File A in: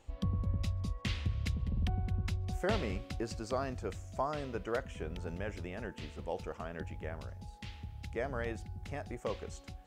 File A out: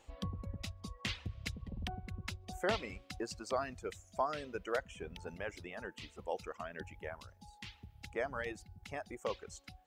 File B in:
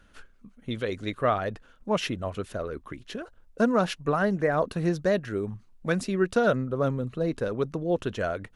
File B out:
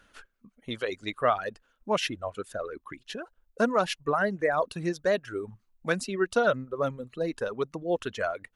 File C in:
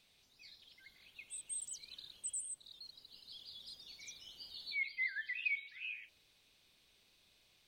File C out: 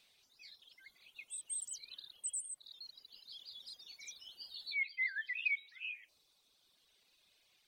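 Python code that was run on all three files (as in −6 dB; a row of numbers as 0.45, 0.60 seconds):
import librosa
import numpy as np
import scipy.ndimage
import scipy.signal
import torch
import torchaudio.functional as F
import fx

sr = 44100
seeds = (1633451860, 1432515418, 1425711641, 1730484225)

y = fx.dereverb_blind(x, sr, rt60_s=1.6)
y = fx.low_shelf(y, sr, hz=280.0, db=-10.5)
y = F.gain(torch.from_numpy(y), 2.0).numpy()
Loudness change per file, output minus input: −3.5, −1.5, +1.5 LU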